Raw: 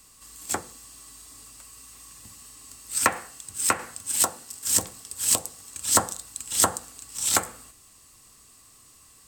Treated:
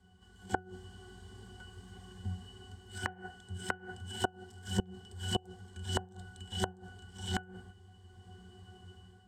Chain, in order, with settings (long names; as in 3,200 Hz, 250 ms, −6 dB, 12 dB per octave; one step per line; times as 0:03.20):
automatic gain control gain up to 9 dB
resonances in every octave F#, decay 0.25 s
gate with flip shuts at −30 dBFS, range −25 dB
level +14 dB